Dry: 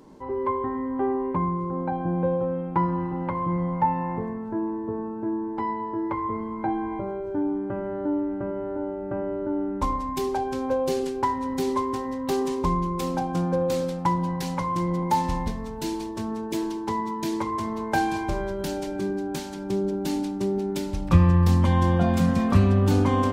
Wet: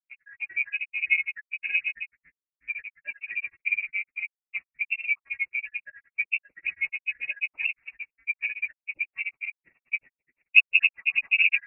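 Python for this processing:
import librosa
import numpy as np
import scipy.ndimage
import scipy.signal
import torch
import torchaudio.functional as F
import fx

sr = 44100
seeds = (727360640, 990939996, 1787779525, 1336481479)

y = fx.spec_dropout(x, sr, seeds[0], share_pct=78)
y = np.sign(y) * np.maximum(np.abs(y) - 10.0 ** (-40.5 / 20.0), 0.0)
y = fx.stretch_vocoder_free(y, sr, factor=0.5)
y = fx.low_shelf_res(y, sr, hz=700.0, db=12.5, q=1.5)
y = fx.freq_invert(y, sr, carrier_hz=2700)
y = y * librosa.db_to_amplitude(-5.5)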